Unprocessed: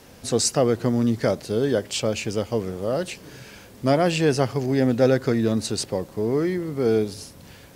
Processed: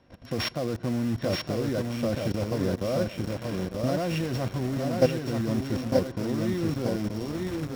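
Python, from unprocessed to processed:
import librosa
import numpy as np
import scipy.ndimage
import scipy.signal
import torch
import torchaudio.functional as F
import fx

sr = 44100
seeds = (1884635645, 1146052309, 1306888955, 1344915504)

p1 = np.r_[np.sort(x[:len(x) // 8 * 8].reshape(-1, 8), axis=1).ravel(), x[len(x) // 8 * 8:]]
p2 = scipy.signal.sosfilt(scipy.signal.butter(2, 3400.0, 'lowpass', fs=sr, output='sos'), p1)
p3 = fx.level_steps(p2, sr, step_db=16)
p4 = p3 + fx.echo_single(p3, sr, ms=904, db=-13.5, dry=0)
p5 = fx.rider(p4, sr, range_db=4, speed_s=0.5)
p6 = fx.low_shelf(p5, sr, hz=77.0, db=6.0)
p7 = fx.notch_comb(p6, sr, f0_hz=430.0)
p8 = fx.quant_dither(p7, sr, seeds[0], bits=6, dither='none')
p9 = p7 + (p8 * 10.0 ** (-6.0 / 20.0))
y = p9 + 10.0 ** (-3.5 / 20.0) * np.pad(p9, (int(931 * sr / 1000.0), 0))[:len(p9)]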